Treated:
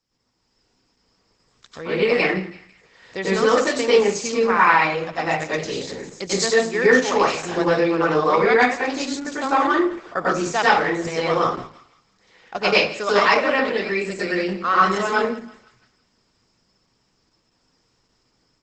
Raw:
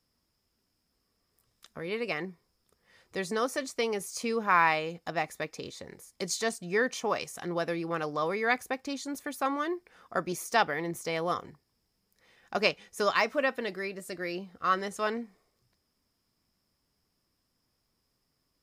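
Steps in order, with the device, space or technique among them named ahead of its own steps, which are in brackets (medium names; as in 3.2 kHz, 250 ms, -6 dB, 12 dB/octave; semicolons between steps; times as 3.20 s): bass shelf 310 Hz -5 dB; thinning echo 166 ms, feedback 47%, high-pass 990 Hz, level -18 dB; speakerphone in a meeting room (reverberation RT60 0.50 s, pre-delay 89 ms, DRR -7.5 dB; level rider gain up to 7 dB; Opus 12 kbps 48 kHz)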